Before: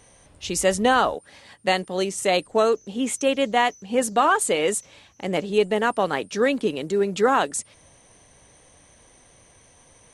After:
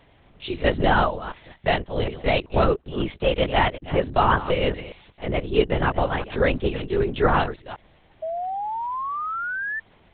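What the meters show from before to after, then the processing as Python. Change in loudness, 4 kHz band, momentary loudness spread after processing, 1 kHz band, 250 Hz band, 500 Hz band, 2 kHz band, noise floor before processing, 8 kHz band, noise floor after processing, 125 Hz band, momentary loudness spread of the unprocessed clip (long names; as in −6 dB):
−1.5 dB, −1.5 dB, 14 LU, 0.0 dB, −1.0 dB, −1.0 dB, +0.5 dB, −55 dBFS, below −40 dB, −57 dBFS, +10.0 dB, 9 LU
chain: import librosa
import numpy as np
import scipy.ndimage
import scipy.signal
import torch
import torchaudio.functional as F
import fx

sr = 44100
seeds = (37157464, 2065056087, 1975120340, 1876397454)

y = fx.reverse_delay(x, sr, ms=189, wet_db=-13.5)
y = fx.lpc_vocoder(y, sr, seeds[0], excitation='whisper', order=8)
y = fx.spec_paint(y, sr, seeds[1], shape='rise', start_s=8.22, length_s=1.58, low_hz=630.0, high_hz=1800.0, level_db=-28.0)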